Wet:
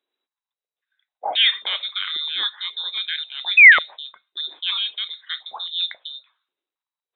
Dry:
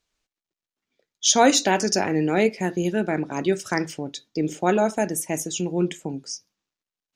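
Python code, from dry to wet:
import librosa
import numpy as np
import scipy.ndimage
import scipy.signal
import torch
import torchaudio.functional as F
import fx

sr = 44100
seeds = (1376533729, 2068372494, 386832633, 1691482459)

y = fx.spec_paint(x, sr, seeds[0], shape='rise', start_s=3.57, length_s=0.22, low_hz=1300.0, high_hz=2800.0, level_db=-11.0)
y = fx.freq_invert(y, sr, carrier_hz=3900)
y = fx.filter_held_highpass(y, sr, hz=3.7, low_hz=360.0, high_hz=2000.0)
y = y * 10.0 ** (-5.5 / 20.0)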